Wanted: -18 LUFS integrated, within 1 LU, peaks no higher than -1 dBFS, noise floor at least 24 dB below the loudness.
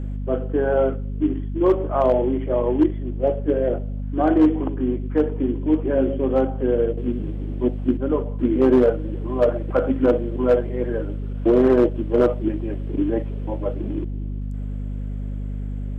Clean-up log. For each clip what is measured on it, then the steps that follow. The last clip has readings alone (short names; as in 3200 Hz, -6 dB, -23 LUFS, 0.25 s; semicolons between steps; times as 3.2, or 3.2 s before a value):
clipped 0.8%; flat tops at -9.0 dBFS; hum 50 Hz; harmonics up to 250 Hz; hum level -25 dBFS; loudness -22.0 LUFS; peak -9.0 dBFS; loudness target -18.0 LUFS
-> clip repair -9 dBFS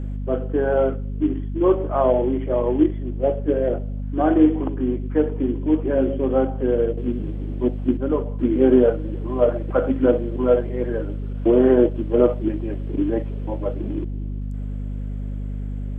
clipped 0.0%; hum 50 Hz; harmonics up to 250 Hz; hum level -25 dBFS
-> notches 50/100/150/200/250 Hz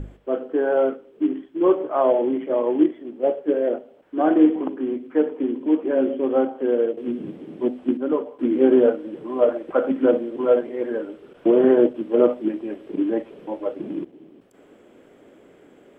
hum none; loudness -22.0 LUFS; peak -4.0 dBFS; loudness target -18.0 LUFS
-> gain +4 dB; limiter -1 dBFS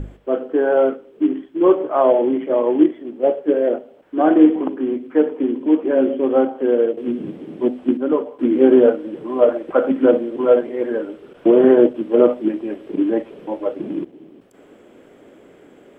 loudness -18.0 LUFS; peak -1.0 dBFS; noise floor -48 dBFS